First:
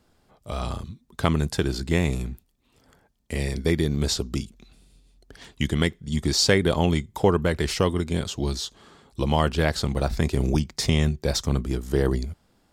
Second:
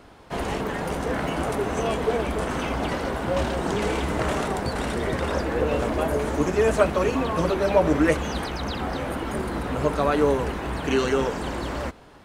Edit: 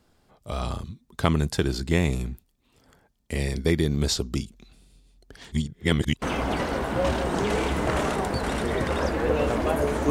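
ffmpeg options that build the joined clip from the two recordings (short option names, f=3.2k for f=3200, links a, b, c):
-filter_complex "[0:a]apad=whole_dur=10.1,atrim=end=10.1,asplit=2[a][b];[a]atrim=end=5.522[c];[b]atrim=start=5.518:end=6.222,asetpts=PTS-STARTPTS,areverse[d];[1:a]atrim=start=2.538:end=6.42[e];[c][d]acrossfade=d=0.004:c1=hsin:c2=hsin[f];[f][e]acrossfade=d=0.004:c1=hsin:c2=hsin"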